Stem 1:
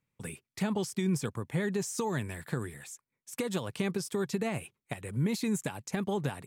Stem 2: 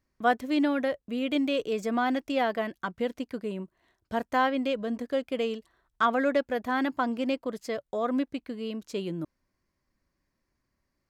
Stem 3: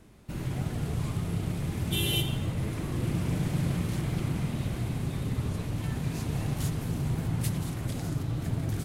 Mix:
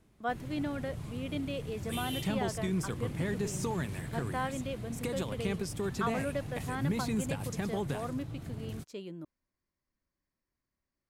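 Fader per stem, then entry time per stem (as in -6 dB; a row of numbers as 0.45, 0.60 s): -3.0, -10.0, -10.5 dB; 1.65, 0.00, 0.00 s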